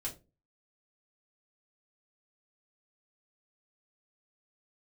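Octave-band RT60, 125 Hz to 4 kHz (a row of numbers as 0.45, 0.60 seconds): 0.45, 0.45, 0.35, 0.25, 0.20, 0.20 seconds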